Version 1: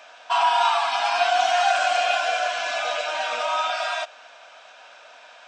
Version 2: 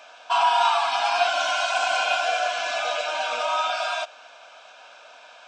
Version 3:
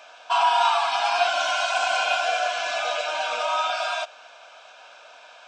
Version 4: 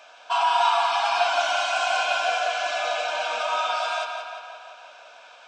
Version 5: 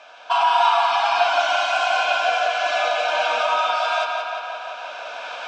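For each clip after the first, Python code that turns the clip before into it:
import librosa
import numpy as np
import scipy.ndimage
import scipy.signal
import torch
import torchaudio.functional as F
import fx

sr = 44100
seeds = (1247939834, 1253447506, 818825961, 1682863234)

y1 = fx.spec_repair(x, sr, seeds[0], start_s=1.29, length_s=0.88, low_hz=590.0, high_hz=1900.0, source='after')
y1 = fx.notch(y1, sr, hz=1900.0, q=6.2)
y2 = fx.peak_eq(y1, sr, hz=240.0, db=-4.0, octaves=0.51)
y3 = fx.echo_tape(y2, sr, ms=174, feedback_pct=63, wet_db=-5, lp_hz=5100.0, drive_db=5.0, wow_cents=12)
y3 = F.gain(torch.from_numpy(y3), -2.0).numpy()
y4 = fx.recorder_agc(y3, sr, target_db=-13.5, rise_db_per_s=7.8, max_gain_db=30)
y4 = fx.air_absorb(y4, sr, metres=87.0)
y4 = F.gain(torch.from_numpy(y4), 4.0).numpy()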